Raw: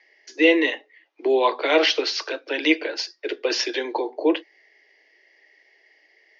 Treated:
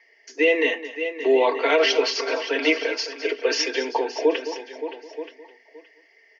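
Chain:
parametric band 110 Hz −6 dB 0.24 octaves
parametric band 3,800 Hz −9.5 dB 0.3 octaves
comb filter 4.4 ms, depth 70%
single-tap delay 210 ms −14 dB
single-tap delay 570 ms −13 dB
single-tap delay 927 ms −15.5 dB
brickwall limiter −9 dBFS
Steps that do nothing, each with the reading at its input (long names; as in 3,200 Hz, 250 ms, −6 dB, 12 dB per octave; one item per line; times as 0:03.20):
parametric band 110 Hz: nothing at its input below 240 Hz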